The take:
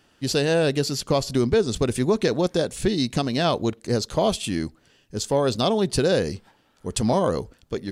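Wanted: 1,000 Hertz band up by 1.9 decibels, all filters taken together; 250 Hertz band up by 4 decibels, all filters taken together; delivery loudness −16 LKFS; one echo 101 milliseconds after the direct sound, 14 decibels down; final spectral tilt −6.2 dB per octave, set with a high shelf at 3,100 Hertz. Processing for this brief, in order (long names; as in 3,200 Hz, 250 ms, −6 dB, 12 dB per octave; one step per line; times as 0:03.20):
parametric band 250 Hz +5 dB
parametric band 1,000 Hz +3 dB
high-shelf EQ 3,100 Hz −7.5 dB
single-tap delay 101 ms −14 dB
level +5.5 dB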